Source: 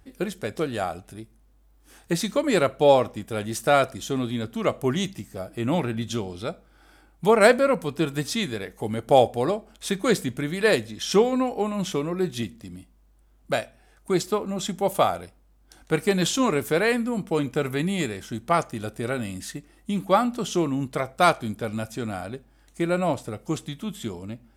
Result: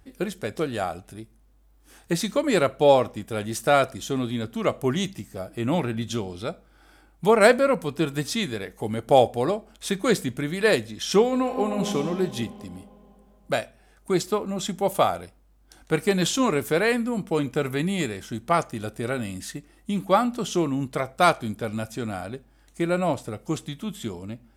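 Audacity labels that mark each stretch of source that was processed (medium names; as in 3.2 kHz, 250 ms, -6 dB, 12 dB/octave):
11.250000	11.920000	reverb throw, RT60 2.9 s, DRR 5 dB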